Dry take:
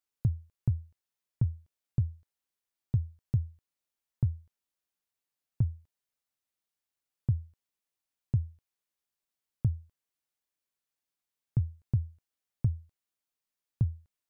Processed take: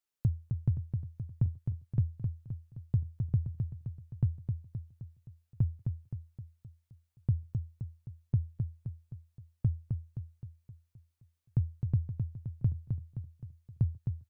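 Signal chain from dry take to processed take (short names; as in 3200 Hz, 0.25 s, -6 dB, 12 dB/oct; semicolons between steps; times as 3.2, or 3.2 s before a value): feedback echo 0.261 s, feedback 52%, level -5.5 dB; gain -1 dB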